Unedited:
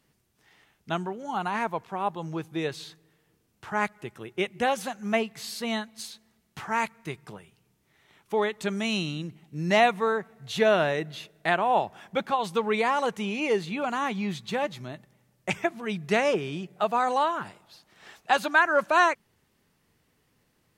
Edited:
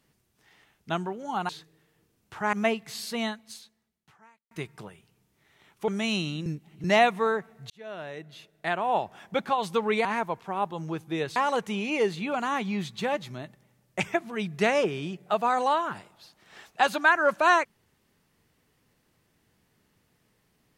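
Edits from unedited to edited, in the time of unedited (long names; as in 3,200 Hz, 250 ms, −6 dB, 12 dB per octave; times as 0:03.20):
0:01.49–0:02.80: move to 0:12.86
0:03.84–0:05.02: remove
0:05.69–0:07.00: fade out quadratic
0:08.37–0:08.69: remove
0:09.27–0:09.65: reverse
0:10.51–0:12.16: fade in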